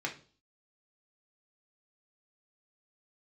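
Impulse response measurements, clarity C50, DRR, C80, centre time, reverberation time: 12.0 dB, -1.0 dB, 18.0 dB, 14 ms, 0.40 s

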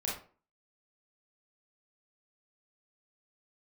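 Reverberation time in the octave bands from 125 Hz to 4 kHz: 0.40 s, 0.45 s, 0.40 s, 0.40 s, 0.35 s, 0.25 s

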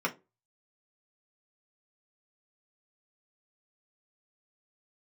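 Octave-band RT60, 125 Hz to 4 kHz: 0.30 s, 0.30 s, 0.30 s, 0.20 s, 0.20 s, 0.15 s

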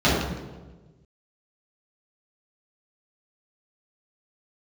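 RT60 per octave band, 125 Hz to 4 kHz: 1.7 s, 1.5 s, 1.4 s, 1.1 s, 0.90 s, 0.85 s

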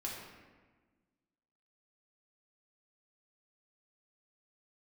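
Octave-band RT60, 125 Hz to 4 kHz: 1.7 s, 1.9 s, 1.4 s, 1.3 s, 1.3 s, 0.85 s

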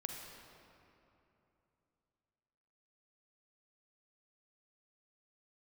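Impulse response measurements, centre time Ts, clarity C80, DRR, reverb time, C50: 92 ms, 3.5 dB, 1.5 dB, 3.0 s, 2.0 dB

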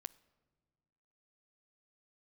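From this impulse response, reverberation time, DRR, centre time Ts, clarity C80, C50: no single decay rate, 17.5 dB, 2 ms, 23.0 dB, 21.0 dB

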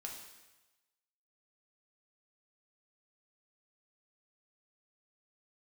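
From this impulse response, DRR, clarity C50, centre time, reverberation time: -0.5 dB, 4.5 dB, 42 ms, 1.1 s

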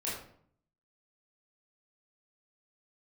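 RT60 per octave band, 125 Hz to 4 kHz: 0.85 s, 0.80 s, 0.60 s, 0.60 s, 0.50 s, 0.40 s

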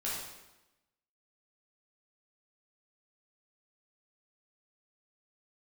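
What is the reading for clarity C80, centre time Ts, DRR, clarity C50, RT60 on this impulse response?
3.5 dB, 69 ms, -7.5 dB, 0.0 dB, 1.0 s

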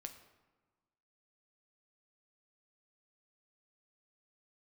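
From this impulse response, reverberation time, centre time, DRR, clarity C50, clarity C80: 1.3 s, 14 ms, 6.0 dB, 10.5 dB, 12.0 dB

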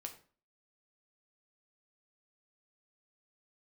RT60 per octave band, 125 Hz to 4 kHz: 0.45 s, 0.50 s, 0.40 s, 0.40 s, 0.35 s, 0.30 s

